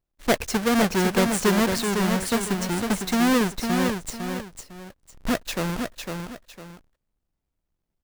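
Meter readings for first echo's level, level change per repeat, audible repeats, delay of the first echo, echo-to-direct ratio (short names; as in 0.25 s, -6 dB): -5.5 dB, -10.0 dB, 2, 0.504 s, -5.0 dB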